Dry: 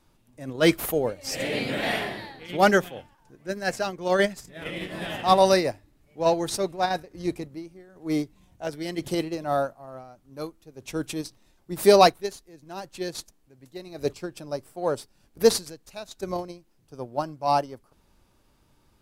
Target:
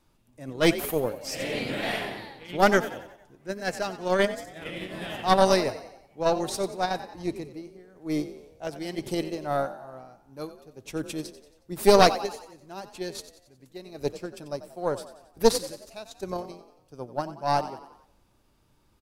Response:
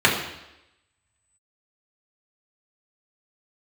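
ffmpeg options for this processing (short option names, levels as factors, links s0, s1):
-filter_complex "[0:a]asplit=6[s0][s1][s2][s3][s4][s5];[s1]adelay=91,afreqshift=43,volume=0.224[s6];[s2]adelay=182,afreqshift=86,volume=0.11[s7];[s3]adelay=273,afreqshift=129,volume=0.0537[s8];[s4]adelay=364,afreqshift=172,volume=0.0263[s9];[s5]adelay=455,afreqshift=215,volume=0.0129[s10];[s0][s6][s7][s8][s9][s10]amix=inputs=6:normalize=0,asplit=2[s11][s12];[1:a]atrim=start_sample=2205,asetrate=33957,aresample=44100[s13];[s12][s13]afir=irnorm=-1:irlink=0,volume=0.00708[s14];[s11][s14]amix=inputs=2:normalize=0,aeval=exprs='0.668*(cos(1*acos(clip(val(0)/0.668,-1,1)))-cos(1*PI/2))+0.299*(cos(2*acos(clip(val(0)/0.668,-1,1)))-cos(2*PI/2))':c=same,volume=0.708"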